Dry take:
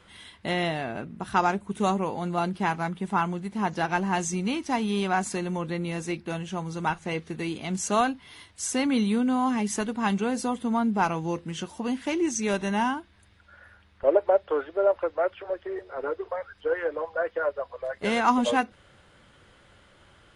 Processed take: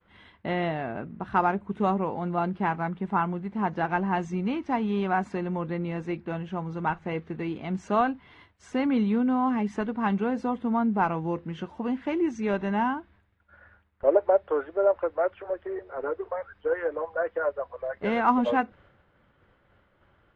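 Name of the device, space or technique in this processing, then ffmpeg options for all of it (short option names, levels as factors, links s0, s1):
hearing-loss simulation: -af "lowpass=1900,agate=range=0.0224:threshold=0.00282:ratio=3:detection=peak"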